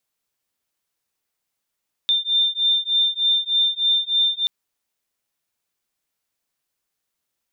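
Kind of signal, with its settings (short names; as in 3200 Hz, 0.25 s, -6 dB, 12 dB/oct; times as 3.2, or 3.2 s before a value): beating tones 3590 Hz, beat 3.3 Hz, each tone -20 dBFS 2.38 s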